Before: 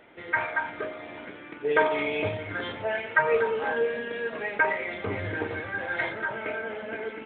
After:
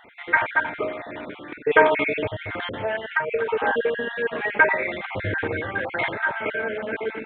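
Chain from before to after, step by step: random holes in the spectrogram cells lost 33%; 2.12–3.49 s: compression 2:1, threshold -33 dBFS, peak gain reduction 9.5 dB; trim +7 dB

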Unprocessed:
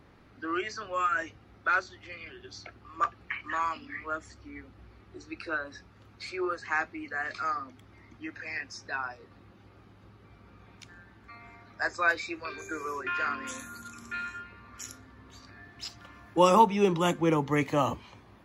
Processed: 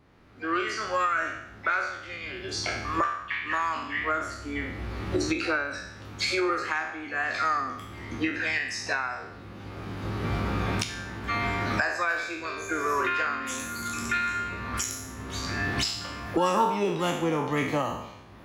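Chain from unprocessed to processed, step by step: spectral sustain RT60 0.67 s; recorder AGC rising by 18 dB/s; harmony voices +7 st -14 dB; trim -5.5 dB

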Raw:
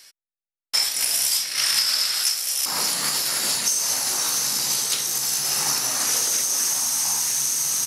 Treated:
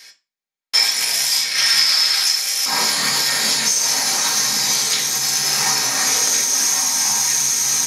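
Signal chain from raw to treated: in parallel at +2 dB: peak limiter -13.5 dBFS, peak gain reduction 9 dB; on the sum: reverberation RT60 0.25 s, pre-delay 3 ms, DRR -0.5 dB; trim -6 dB

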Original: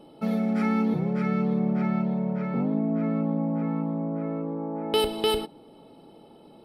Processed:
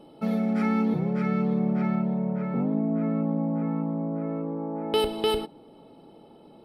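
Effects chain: treble shelf 3.4 kHz -2 dB, from 1.95 s -11.5 dB, from 4.29 s -5 dB

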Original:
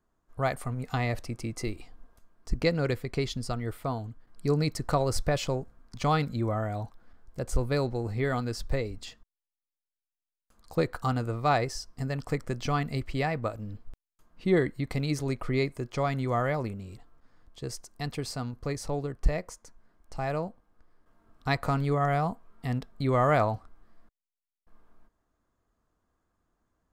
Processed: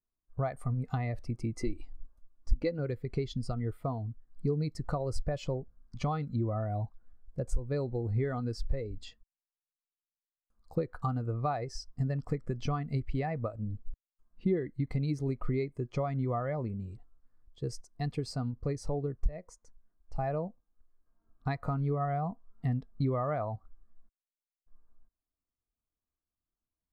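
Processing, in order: compression 10:1, threshold -31 dBFS, peak gain reduction 15.5 dB; 1.62–2.79 s: comb 3.5 ms, depth 44%; spectral contrast expander 1.5:1; trim +6.5 dB

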